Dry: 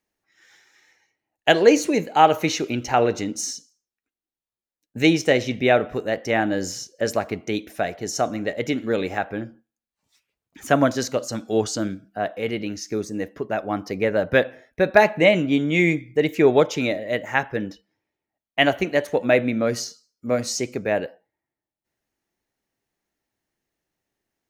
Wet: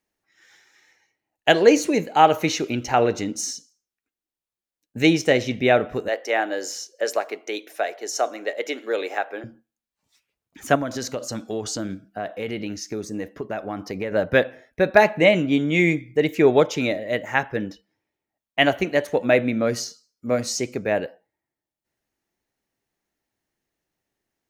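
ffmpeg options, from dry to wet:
-filter_complex "[0:a]asettb=1/sr,asplit=3[a][b][c];[a]atrim=end=6.084[d];[b]atrim=start=6.08:end=9.44,asetpts=PTS-STARTPTS,afade=t=in:d=0.004:c=qsin,afade=t=out:st=3.356:d=0.004:c=qsin,highpass=f=380:w=0.5412,highpass=f=380:w=1.3066[e];[c]atrim=start=9.436[f];[d][e]acrossfade=d=0.004:c1=hsin:c2=qsin[g];[g][f]acrossfade=d=0.004:c1=qsin:c2=hsin,asettb=1/sr,asplit=3[h][i][j];[h]atrim=end=10.754[k];[i]atrim=start=10.75:end=14.12,asetpts=PTS-STARTPTS,afade=t=in:d=0.004:c=qsin,afade=t=out:st=3.366:d=0.004:c=qsin,acompressor=threshold=-24dB:ratio=4:attack=3.2:release=140:knee=1:detection=peak[l];[j]atrim=start=14.116[m];[k][l]acrossfade=d=0.004:c1=hsin:c2=qsin[n];[n][m]acrossfade=d=0.004:c1=qsin:c2=hsin"

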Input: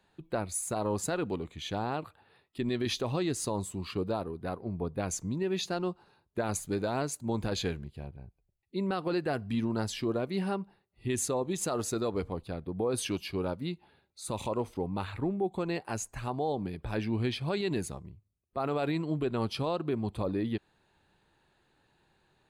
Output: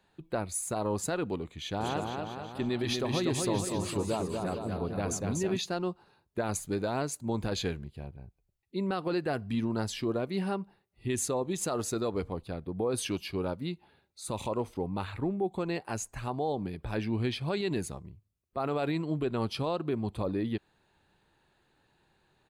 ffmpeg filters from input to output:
-filter_complex "[0:a]asplit=3[a][b][c];[a]afade=t=out:st=1.79:d=0.02[d];[b]aecho=1:1:240|456|650.4|825.4|982.8:0.631|0.398|0.251|0.158|0.1,afade=t=in:st=1.79:d=0.02,afade=t=out:st=5.56:d=0.02[e];[c]afade=t=in:st=5.56:d=0.02[f];[d][e][f]amix=inputs=3:normalize=0"

